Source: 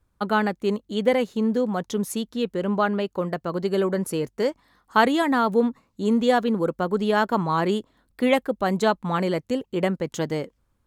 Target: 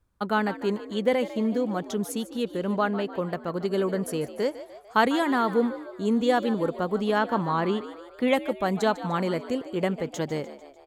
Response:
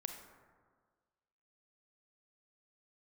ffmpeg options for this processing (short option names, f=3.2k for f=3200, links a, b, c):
-filter_complex "[0:a]asplit=6[a][b][c][d][e][f];[b]adelay=149,afreqshift=64,volume=-14.5dB[g];[c]adelay=298,afreqshift=128,volume=-19.9dB[h];[d]adelay=447,afreqshift=192,volume=-25.2dB[i];[e]adelay=596,afreqshift=256,volume=-30.6dB[j];[f]adelay=745,afreqshift=320,volume=-35.9dB[k];[a][g][h][i][j][k]amix=inputs=6:normalize=0,asettb=1/sr,asplit=3[l][m][n];[l]atrim=end=7.184[o];[m]atrim=start=7.18:end=8.28,asetpts=PTS-STARTPTS,afade=t=in:d=0.004:c=qsin,afade=t=out:st=1.096:d=0.004:c=qsin,acrossover=split=4700[p][q];[q]acompressor=threshold=-56dB:ratio=4:attack=1:release=60[r];[p][r]amix=inputs=2:normalize=0[s];[n]atrim=start=8.276[t];[o][s]acrossfade=d=0.004:c1=hsin:c2=qsin[u];[u][t]acrossfade=d=0.004:c1=qsin:c2=hsin,volume=-3dB"